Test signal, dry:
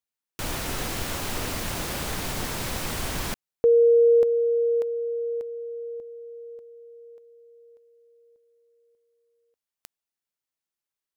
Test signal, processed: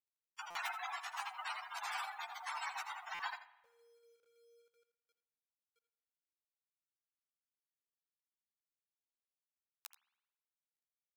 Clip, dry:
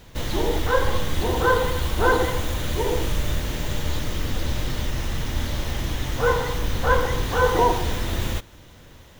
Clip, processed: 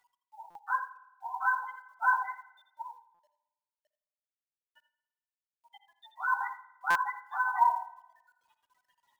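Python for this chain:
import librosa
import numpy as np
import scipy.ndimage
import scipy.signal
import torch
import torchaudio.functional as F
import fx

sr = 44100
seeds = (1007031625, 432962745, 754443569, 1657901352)

p1 = fx.spec_gate(x, sr, threshold_db=-15, keep='strong')
p2 = scipy.signal.sosfilt(scipy.signal.butter(12, 770.0, 'highpass', fs=sr, output='sos'), p1)
p3 = fx.dynamic_eq(p2, sr, hz=4200.0, q=0.77, threshold_db=-44.0, ratio=8.0, max_db=-7)
p4 = fx.rider(p3, sr, range_db=4, speed_s=2.0)
p5 = fx.chorus_voices(p4, sr, voices=2, hz=0.56, base_ms=12, depth_ms=2.9, mix_pct=45)
p6 = fx.tremolo_shape(p5, sr, shape='triangle', hz=1.6, depth_pct=50)
p7 = fx.quant_companded(p6, sr, bits=8)
p8 = p7 + fx.echo_single(p7, sr, ms=83, db=-12.5, dry=0)
p9 = fx.rev_spring(p8, sr, rt60_s=1.0, pass_ms=(54,), chirp_ms=80, drr_db=15.0)
p10 = fx.buffer_glitch(p9, sr, at_s=(0.5, 3.14, 6.9), block=256, repeats=8)
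y = F.gain(torch.from_numpy(p10), 4.0).numpy()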